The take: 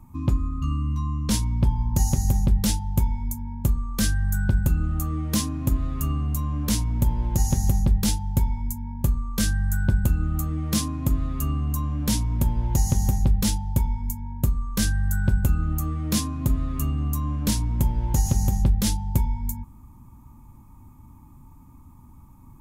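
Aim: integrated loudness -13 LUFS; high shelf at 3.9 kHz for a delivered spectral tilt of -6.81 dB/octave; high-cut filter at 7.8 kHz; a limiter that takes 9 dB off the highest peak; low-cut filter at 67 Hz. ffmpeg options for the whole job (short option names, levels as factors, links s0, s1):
-af "highpass=67,lowpass=7800,highshelf=f=3900:g=-6,volume=6.31,alimiter=limit=0.841:level=0:latency=1"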